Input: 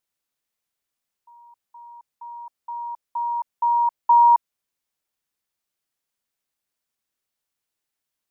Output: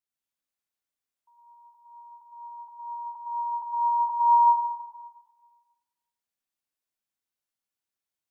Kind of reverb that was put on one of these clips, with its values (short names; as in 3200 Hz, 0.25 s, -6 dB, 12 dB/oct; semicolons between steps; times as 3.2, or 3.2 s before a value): plate-style reverb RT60 1.5 s, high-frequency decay 0.9×, pre-delay 90 ms, DRR -3 dB; gain -12 dB